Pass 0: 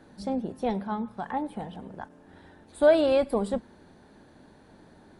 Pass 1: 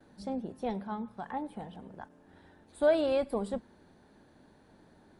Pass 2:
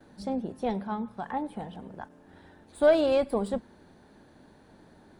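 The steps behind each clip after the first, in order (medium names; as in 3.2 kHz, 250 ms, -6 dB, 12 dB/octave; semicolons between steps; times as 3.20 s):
gate with hold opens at -49 dBFS; trim -6 dB
tracing distortion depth 0.026 ms; trim +4.5 dB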